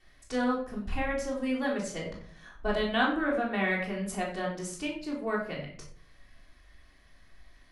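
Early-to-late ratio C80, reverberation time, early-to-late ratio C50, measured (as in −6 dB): 9.0 dB, 0.50 s, 6.0 dB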